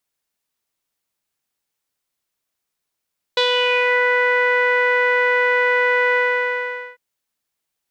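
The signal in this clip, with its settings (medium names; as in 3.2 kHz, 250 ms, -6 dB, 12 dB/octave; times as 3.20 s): synth note saw B4 12 dB/octave, low-pass 1.9 kHz, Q 5.1, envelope 1 oct, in 0.62 s, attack 4 ms, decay 0.09 s, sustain -2.5 dB, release 0.82 s, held 2.78 s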